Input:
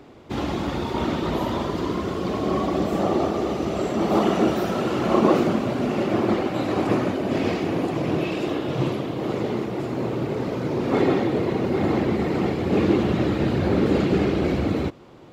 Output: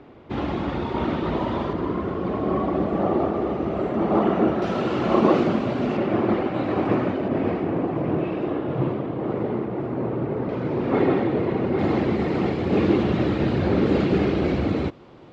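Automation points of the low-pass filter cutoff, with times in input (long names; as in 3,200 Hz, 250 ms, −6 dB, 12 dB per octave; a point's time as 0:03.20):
2,900 Hz
from 0:01.73 1,900 Hz
from 0:04.62 4,200 Hz
from 0:05.97 2,600 Hz
from 0:07.28 1,600 Hz
from 0:10.49 2,600 Hz
from 0:11.79 4,800 Hz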